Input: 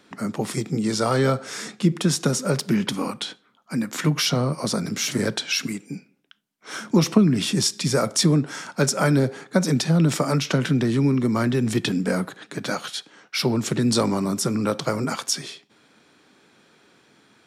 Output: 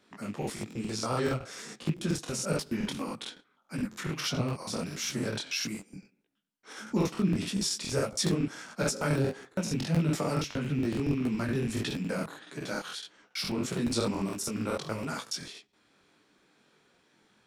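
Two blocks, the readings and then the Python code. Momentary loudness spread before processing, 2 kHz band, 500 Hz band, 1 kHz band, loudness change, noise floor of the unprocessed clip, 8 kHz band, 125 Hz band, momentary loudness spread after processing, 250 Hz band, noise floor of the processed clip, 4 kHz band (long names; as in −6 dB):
11 LU, −8.5 dB, −9.0 dB, −9.0 dB, −9.5 dB, −61 dBFS, −9.0 dB, −9.5 dB, 11 LU, −9.5 dB, −70 dBFS, −9.0 dB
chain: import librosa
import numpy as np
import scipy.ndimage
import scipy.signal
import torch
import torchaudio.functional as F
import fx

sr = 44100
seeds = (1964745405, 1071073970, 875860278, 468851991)

y = fx.rattle_buzz(x, sr, strikes_db=-29.0, level_db=-28.0)
y = fx.buffer_crackle(y, sr, first_s=0.38, period_s=0.14, block=2048, kind='repeat')
y = fx.detune_double(y, sr, cents=55)
y = y * librosa.db_to_amplitude(-5.5)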